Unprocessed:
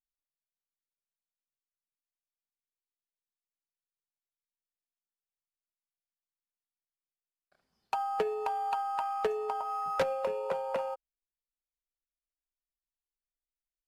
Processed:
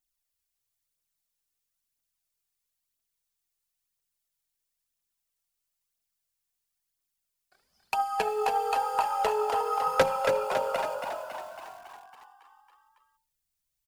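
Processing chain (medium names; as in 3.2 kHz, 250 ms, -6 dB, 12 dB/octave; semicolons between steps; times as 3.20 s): treble shelf 3.4 kHz +10 dB; hum notches 60/120/180/240/300/360/420/480/540/600 Hz; phaser 1 Hz, delay 2.9 ms, feedback 53%; on a send: frequency-shifting echo 277 ms, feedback 62%, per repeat +44 Hz, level -7.5 dB; on the sum: bit-crushed delay 281 ms, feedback 35%, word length 8-bit, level -9.5 dB; trim +2 dB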